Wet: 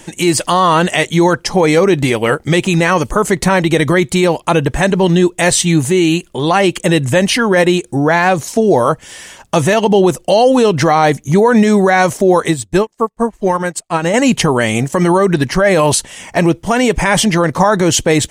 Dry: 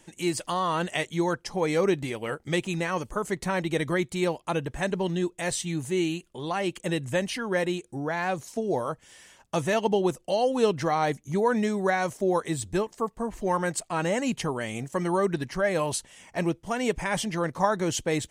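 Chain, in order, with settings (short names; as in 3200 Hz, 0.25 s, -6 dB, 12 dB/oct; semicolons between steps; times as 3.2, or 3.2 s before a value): maximiser +19.5 dB; 12.51–14.14 upward expander 2.5:1, over -26 dBFS; gain -1 dB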